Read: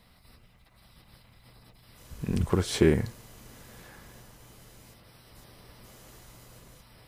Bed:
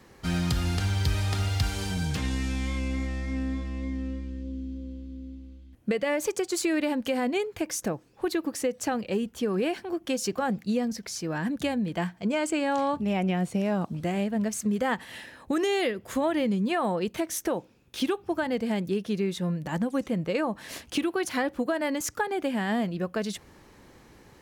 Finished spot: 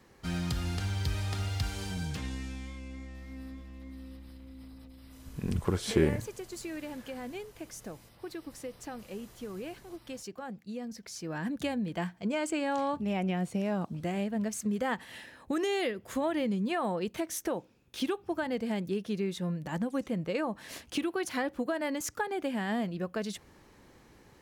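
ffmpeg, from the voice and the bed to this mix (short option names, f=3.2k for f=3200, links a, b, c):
-filter_complex "[0:a]adelay=3150,volume=-4dB[a];[1:a]volume=3dB,afade=t=out:st=2.01:d=0.76:silence=0.421697,afade=t=in:st=10.7:d=0.82:silence=0.354813[b];[a][b]amix=inputs=2:normalize=0"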